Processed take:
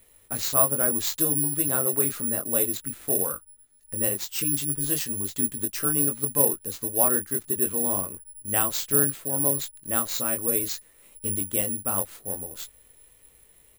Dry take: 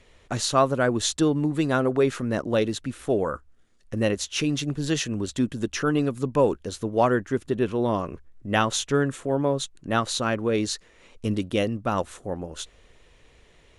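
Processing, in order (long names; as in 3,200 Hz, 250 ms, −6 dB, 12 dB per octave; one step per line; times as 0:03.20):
double-tracking delay 21 ms −5 dB
bad sample-rate conversion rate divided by 4×, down none, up zero stuff
level −8.5 dB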